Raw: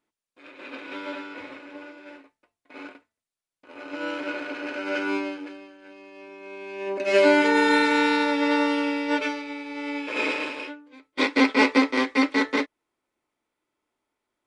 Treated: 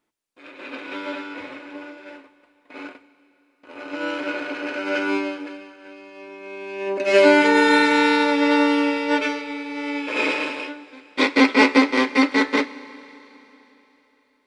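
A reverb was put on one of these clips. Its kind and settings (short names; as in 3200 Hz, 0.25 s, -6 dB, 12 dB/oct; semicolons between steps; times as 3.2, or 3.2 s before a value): Schroeder reverb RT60 3.6 s, combs from 31 ms, DRR 16.5 dB; gain +4 dB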